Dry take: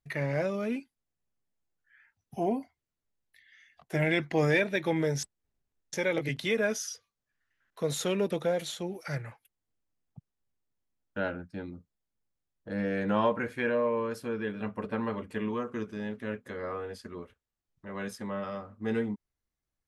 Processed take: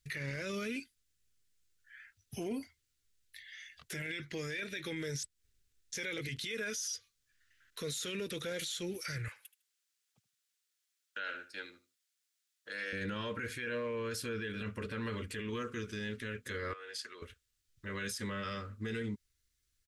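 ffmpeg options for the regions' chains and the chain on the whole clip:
-filter_complex "[0:a]asettb=1/sr,asplit=3[a][b][c];[a]atrim=end=9.284[d];[b]atrim=start=9.28:end=12.93,asetpts=PTS-STARTPTS,afade=t=in:d=0.004:c=qsin,afade=t=out:st=3.646:d=0.004:c=qsin,highpass=690,aecho=1:1:77|154:0.158|0.0365,atrim=end_sample=160965[e];[c]atrim=start=12.926[f];[d][e]acrossfade=d=0.004:c1=hsin:c2=qsin[g];[g][f]acrossfade=d=0.004:c1=qsin:c2=hsin,asettb=1/sr,asplit=3[h][i][j];[h]atrim=end=16.734[k];[i]atrim=start=16.73:end=17.22,asetpts=PTS-STARTPTS,afade=t=in:d=0.004:c=qsin,afade=t=out:st=0.486:d=0.004:c=qsin,highpass=670,acompressor=threshold=-46dB:ratio=6:attack=3.2:release=140:knee=1:detection=peak,highshelf=f=10k:g=-10[l];[j]atrim=start=17.216[m];[k][l]acrossfade=d=0.004:c1=hsin:c2=qsin[n];[n][m]acrossfade=d=0.004:c1=qsin:c2=hsin,firequalizer=gain_entry='entry(100,0);entry(160,-10);entry(450,-7);entry(720,-22);entry(1400,-2);entry(3600,5);entry(7800,6);entry(13000,2)':delay=0.05:min_phase=1,acompressor=threshold=-39dB:ratio=2.5,alimiter=level_in=14dB:limit=-24dB:level=0:latency=1:release=17,volume=-14dB,volume=7.5dB"

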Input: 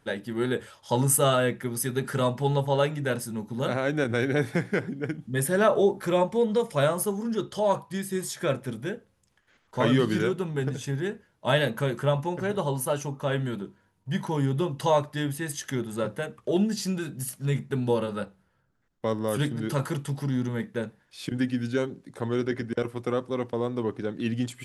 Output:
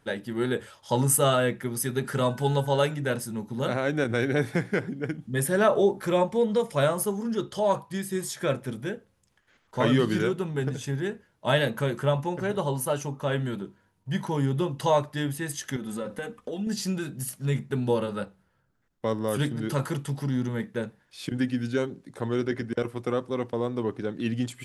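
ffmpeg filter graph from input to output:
-filter_complex "[0:a]asettb=1/sr,asplit=3[a][b][c];[a]atrim=end=2.304[d];[b]atrim=start=2.3:end=2.94,asetpts=PTS-STARTPTS,afade=t=in:d=0.004:c=qsin,afade=t=out:st=0.636:d=0.004:c=qsin,highshelf=f=5.3k:g=8,aeval=exprs='val(0)+0.00398*sin(2*PI*1500*n/s)':c=same[e];[c]atrim=start=2.936[f];[d][e]acrossfade=d=0.004:c1=hsin:c2=qsin[g];[g][f]acrossfade=d=0.004:c1=qsin:c2=hsin,asettb=1/sr,asplit=3[h][i][j];[h]atrim=end=15.764[k];[i]atrim=start=15.76:end=16.67,asetpts=PTS-STARTPTS,afade=t=in:d=0.004:c=qsin,afade=t=out:st=0.906:d=0.004:c=qsin,acompressor=threshold=-30dB:ratio=6:attack=3.2:release=140:knee=1:detection=peak,aecho=1:1:4:0.61,atrim=end_sample=40131[l];[j]atrim=start=16.666[m];[k][l]acrossfade=d=0.004:c1=hsin:c2=qsin[n];[n][m]acrossfade=d=0.004:c1=qsin:c2=hsin"

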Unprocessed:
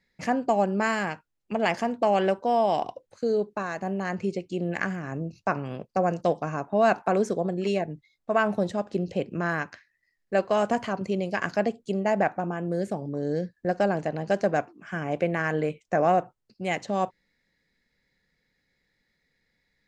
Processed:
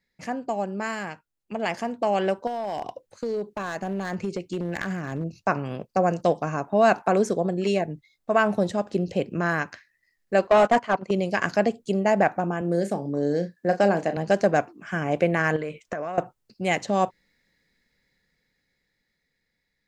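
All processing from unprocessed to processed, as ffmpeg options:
-filter_complex "[0:a]asettb=1/sr,asplit=3[a][b][c];[a]atrim=end=2.474[d];[b]atrim=start=2.47:end=5.24,asetpts=PTS-STARTPTS,afade=t=in:d=0.004:c=qsin,afade=t=out:st=2.766:d=0.004:c=qsin,acompressor=threshold=-25dB:ratio=20:attack=3.2:release=140:knee=1:detection=peak,aeval=exprs='clip(val(0),-1,0.0596)':c=same[e];[c]atrim=start=5.236[f];[d][e]acrossfade=d=0.004:c1=hsin:c2=qsin[g];[g][f]acrossfade=d=0.004:c1=qsin:c2=hsin,asettb=1/sr,asplit=3[h][i][j];[h]atrim=end=10.474[k];[i]atrim=start=10.47:end=11.11,asetpts=PTS-STARTPTS,afade=t=in:d=0.004:c=qsin,afade=t=out:st=0.636:d=0.004:c=qsin,agate=range=-17dB:threshold=-29dB:ratio=16:release=100:detection=peak,asplit=2[l][m];[m]highpass=f=720:p=1,volume=18dB,asoftclip=type=tanh:threshold=-11.5dB[n];[l][n]amix=inputs=2:normalize=0,lowpass=f=1.8k:p=1,volume=-6dB[o];[j]atrim=start=11.106[p];[k][o]acrossfade=d=0.004:c1=hsin:c2=qsin[q];[q][p]acrossfade=d=0.004:c1=qsin:c2=hsin,asettb=1/sr,asplit=3[r][s][t];[r]atrim=end=12.614[u];[s]atrim=start=12.61:end=14.17,asetpts=PTS-STARTPTS,afade=t=in:d=0.004:c=qsin,afade=t=out:st=1.556:d=0.004:c=qsin,highpass=160,asplit=2[v][w];[w]adelay=35,volume=-10dB[x];[v][x]amix=inputs=2:normalize=0,atrim=end_sample=68796[y];[t]atrim=start=14.166[z];[u][y]acrossfade=d=0.004:c1=hsin:c2=qsin[aa];[aa][z]acrossfade=d=0.004:c1=qsin:c2=hsin,asettb=1/sr,asplit=3[ab][ac][ad];[ab]atrim=end=15.564[ae];[ac]atrim=start=15.56:end=16.18,asetpts=PTS-STARTPTS,afade=t=in:d=0.004:c=qsin,afade=t=out:st=0.616:d=0.004:c=qsin,equalizer=f=1.4k:w=0.41:g=6.5,acompressor=threshold=-30dB:ratio=10:attack=3.2:release=140:knee=1:detection=peak,bandreject=f=800:w=6.3[af];[ad]atrim=start=16.176[ag];[ae][af]acrossfade=d=0.004:c1=hsin:c2=qsin[ah];[ah][ag]acrossfade=d=0.004:c1=qsin:c2=hsin,dynaudnorm=f=420:g=11:m=11.5dB,highshelf=f=6.6k:g=5,volume=-5dB"

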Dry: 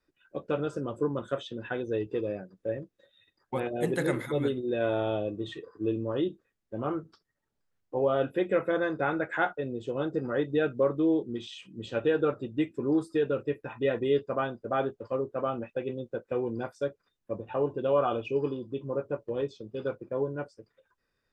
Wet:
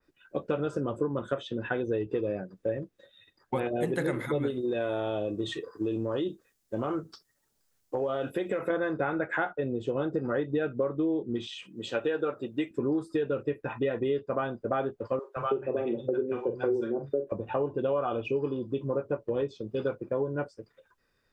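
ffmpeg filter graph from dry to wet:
-filter_complex "[0:a]asettb=1/sr,asplit=3[a][b][c];[a]atrim=end=4.504[d];[b]atrim=start=4.5:end=8.7,asetpts=PTS-STARTPTS,afade=t=in:d=0.004:c=qsin,afade=t=out:st=4.196:d=0.004:c=qsin,bass=f=250:g=-3,treble=f=4k:g=12,acompressor=threshold=-29dB:ratio=6:attack=3.2:release=140:knee=1:detection=peak[e];[c]atrim=start=8.696[f];[d][e]acrossfade=d=0.004:c1=hsin:c2=qsin[g];[g][f]acrossfade=d=0.004:c1=qsin:c2=hsin,asettb=1/sr,asplit=3[h][i][j];[h]atrim=end=11.644[k];[i]atrim=start=11.64:end=12.71,asetpts=PTS-STARTPTS,afade=t=in:d=0.004:c=qsin,afade=t=out:st=1.066:d=0.004:c=qsin,highpass=f=380:p=1,highshelf=f=8.7k:g=8.5[l];[j]atrim=start=12.706[m];[k][l]acrossfade=d=0.004:c1=hsin:c2=qsin[n];[n][m]acrossfade=d=0.004:c1=qsin:c2=hsin,asettb=1/sr,asplit=3[o][p][q];[o]atrim=end=15.194[r];[p]atrim=start=15.19:end=17.32,asetpts=PTS-STARTPTS,afade=t=in:d=0.004:c=qsin,afade=t=out:st=2.126:d=0.004:c=qsin,equalizer=f=380:w=3.3:g=11.5,asplit=2[s][t];[t]adelay=43,volume=-8.5dB[u];[s][u]amix=inputs=2:normalize=0,atrim=end_sample=93933,acrossover=split=160|760[v][w][x];[v]adelay=170[y];[w]adelay=320[z];[y][z][x]amix=inputs=3:normalize=0,atrim=end_sample=93933[aa];[q]atrim=start=17.316[ab];[r][aa]acrossfade=d=0.004:c1=hsin:c2=qsin[ac];[ac][ab]acrossfade=d=0.004:c1=qsin:c2=hsin,acompressor=threshold=-31dB:ratio=6,adynamicequalizer=threshold=0.00158:dfrequency=2900:dqfactor=0.7:tfrequency=2900:tqfactor=0.7:attack=5:release=100:ratio=0.375:range=3:mode=cutabove:tftype=highshelf,volume=5.5dB"

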